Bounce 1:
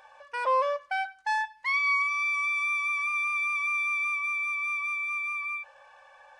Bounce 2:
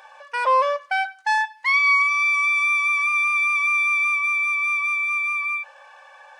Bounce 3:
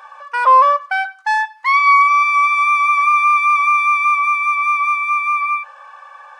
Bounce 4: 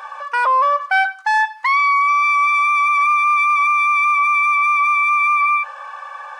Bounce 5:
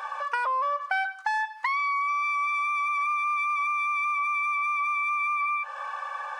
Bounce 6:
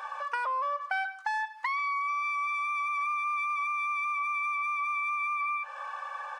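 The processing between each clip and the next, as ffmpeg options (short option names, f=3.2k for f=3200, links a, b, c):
-af "highpass=f=600:p=1,volume=8.5dB"
-af "equalizer=f=1.2k:t=o:w=0.53:g=15"
-af "alimiter=level_in=15dB:limit=-1dB:release=50:level=0:latency=1,volume=-8.5dB"
-af "acompressor=threshold=-23dB:ratio=6,volume=-2dB"
-af "aecho=1:1:136:0.0631,volume=-4dB"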